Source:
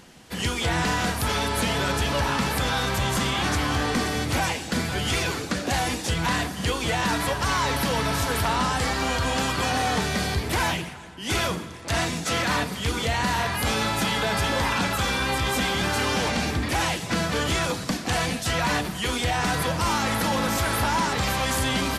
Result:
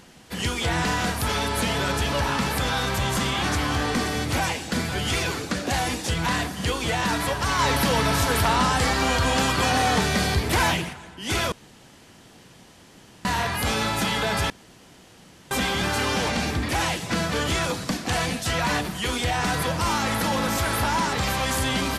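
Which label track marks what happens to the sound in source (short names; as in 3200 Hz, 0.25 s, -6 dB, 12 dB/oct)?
7.590000	10.930000	gain +3 dB
11.520000	13.250000	room tone
14.500000	15.510000	room tone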